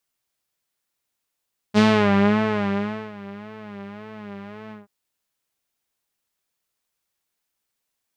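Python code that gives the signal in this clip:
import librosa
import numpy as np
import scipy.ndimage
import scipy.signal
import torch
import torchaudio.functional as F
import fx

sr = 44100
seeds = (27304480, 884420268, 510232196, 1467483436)

y = fx.sub_patch_vibrato(sr, seeds[0], note=56, wave='saw', wave2='saw', interval_st=0, detune_cents=16, level2_db=-9.0, sub_db=-17.0, noise_db=-30.0, kind='lowpass', cutoff_hz=1300.0, q=1.0, env_oct=2.0, env_decay_s=0.34, env_sustain_pct=40, attack_ms=38.0, decay_s=1.34, sustain_db=-22.5, release_s=0.16, note_s=2.97, lfo_hz=1.8, vibrato_cents=81)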